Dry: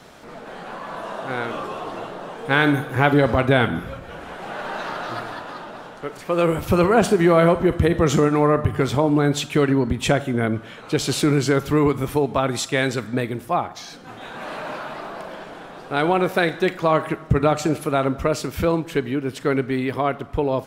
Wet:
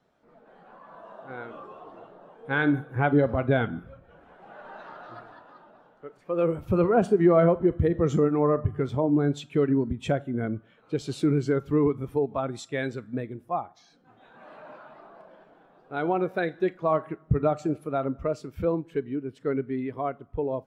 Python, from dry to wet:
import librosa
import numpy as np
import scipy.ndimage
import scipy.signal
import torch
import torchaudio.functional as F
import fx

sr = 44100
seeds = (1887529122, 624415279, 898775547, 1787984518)

y = fx.spectral_expand(x, sr, expansion=1.5)
y = y * librosa.db_to_amplitude(-8.0)